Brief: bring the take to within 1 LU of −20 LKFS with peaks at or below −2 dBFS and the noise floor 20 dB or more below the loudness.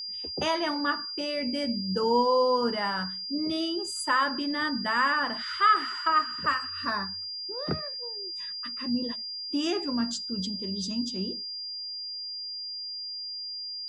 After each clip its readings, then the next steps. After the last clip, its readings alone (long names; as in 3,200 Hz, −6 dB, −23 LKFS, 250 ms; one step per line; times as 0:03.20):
interfering tone 4,800 Hz; level of the tone −34 dBFS; integrated loudness −28.5 LKFS; sample peak −11.5 dBFS; target loudness −20.0 LKFS
→ notch filter 4,800 Hz, Q 30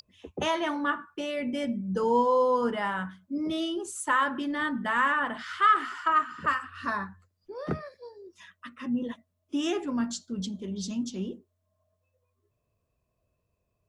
interfering tone none found; integrated loudness −28.5 LKFS; sample peak −12.0 dBFS; target loudness −20.0 LKFS
→ level +8.5 dB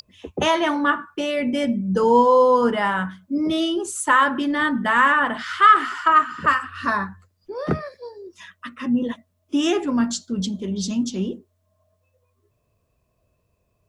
integrated loudness −20.0 LKFS; sample peak −3.5 dBFS; background noise floor −70 dBFS